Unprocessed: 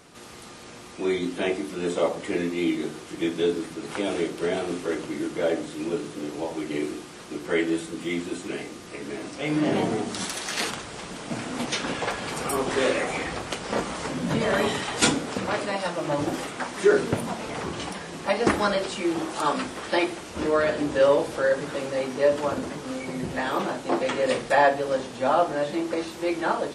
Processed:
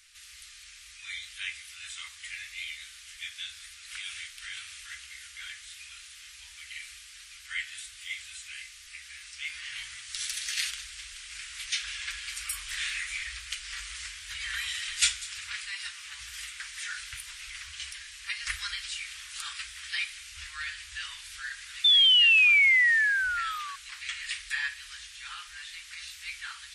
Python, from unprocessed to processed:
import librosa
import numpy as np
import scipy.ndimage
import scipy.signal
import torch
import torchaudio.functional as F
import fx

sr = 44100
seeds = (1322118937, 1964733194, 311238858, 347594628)

y = fx.spec_paint(x, sr, seeds[0], shape='fall', start_s=21.84, length_s=1.92, low_hz=1100.0, high_hz=3600.0, level_db=-18.0)
y = scipy.signal.sosfilt(scipy.signal.cheby2(4, 60, [160.0, 690.0], 'bandstop', fs=sr, output='sos'), y)
y = fx.echo_wet_highpass(y, sr, ms=196, feedback_pct=35, hz=3600.0, wet_db=-15.5)
y = y * 10.0 ** (-1.0 / 20.0)